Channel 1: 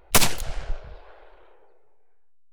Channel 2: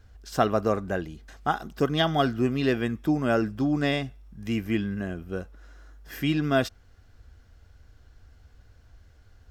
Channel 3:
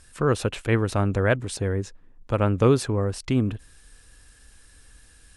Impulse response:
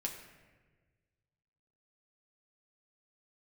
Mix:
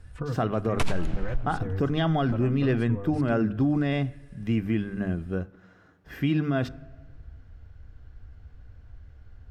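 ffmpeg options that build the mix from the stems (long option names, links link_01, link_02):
-filter_complex "[0:a]lowpass=frequency=11000:width=0.5412,lowpass=frequency=11000:width=1.3066,adelay=650,volume=-7.5dB,asplit=2[link_01][link_02];[link_02]volume=-11dB[link_03];[1:a]volume=-1dB,asplit=2[link_04][link_05];[link_05]volume=-16.5dB[link_06];[2:a]acompressor=threshold=-29dB:ratio=4,asplit=2[link_07][link_08];[link_08]adelay=3.5,afreqshift=-0.75[link_09];[link_07][link_09]amix=inputs=2:normalize=1,volume=-2dB[link_10];[3:a]atrim=start_sample=2205[link_11];[link_03][link_06]amix=inputs=2:normalize=0[link_12];[link_12][link_11]afir=irnorm=-1:irlink=0[link_13];[link_01][link_04][link_10][link_13]amix=inputs=4:normalize=0,bass=frequency=250:gain=8,treble=frequency=4000:gain=-13,bandreject=frequency=50:width_type=h:width=6,bandreject=frequency=100:width_type=h:width=6,bandreject=frequency=150:width_type=h:width=6,bandreject=frequency=200:width_type=h:width=6,bandreject=frequency=250:width_type=h:width=6,bandreject=frequency=300:width_type=h:width=6,alimiter=limit=-16dB:level=0:latency=1:release=48"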